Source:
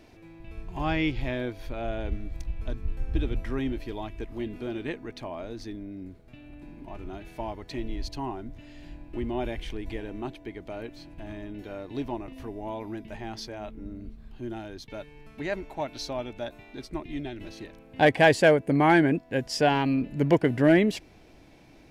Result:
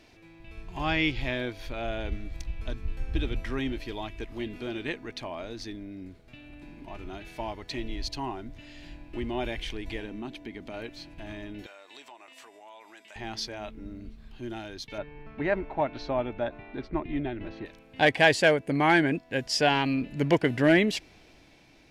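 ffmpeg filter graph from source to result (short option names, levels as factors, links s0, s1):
-filter_complex "[0:a]asettb=1/sr,asplit=3[s0][s1][s2];[s0]atrim=end=10.054[s3];[s1]atrim=start=10.05:end=10.74,asetpts=PTS-STARTPTS,afade=t=in:d=0.004:c=qsin,afade=t=out:st=0.686:d=0.004:c=qsin,equalizer=f=230:t=o:w=0.71:g=9,acompressor=threshold=0.0158:ratio=2:attack=3.2:release=140:knee=1:detection=peak[s4];[s2]atrim=start=10.736[s5];[s3][s4]acrossfade=d=0.004:c1=hsin:c2=qsin[s6];[s6][s5]acrossfade=d=0.004:c1=qsin:c2=hsin,asettb=1/sr,asplit=3[s7][s8][s9];[s7]atrim=end=11.664[s10];[s8]atrim=start=11.66:end=13.16,asetpts=PTS-STARTPTS,afade=t=in:d=0.004:c=qsin,afade=t=out:st=1.496:d=0.004:c=qsin,highpass=800,equalizer=f=7700:t=o:w=0.26:g=15,acompressor=threshold=0.00398:ratio=3:attack=3.2:release=140:knee=1:detection=peak[s11];[s9]atrim=start=13.156[s12];[s10][s11]acrossfade=d=0.004:c1=hsin:c2=qsin[s13];[s13][s12]acrossfade=d=0.004:c1=qsin:c2=hsin,asettb=1/sr,asplit=3[s14][s15][s16];[s14]atrim=end=14.984[s17];[s15]atrim=start=14.98:end=17.66,asetpts=PTS-STARTPTS,afade=t=in:d=0.004:c=qsin,afade=t=out:st=2.676:d=0.004:c=qsin,lowpass=1500,acontrast=35[s18];[s16]atrim=start=17.656[s19];[s17][s18]acrossfade=d=0.004:c1=hsin:c2=qsin[s20];[s20][s19]acrossfade=d=0.004:c1=qsin:c2=hsin,equalizer=f=3800:w=0.38:g=8,dynaudnorm=f=150:g=9:m=1.41,volume=0.562"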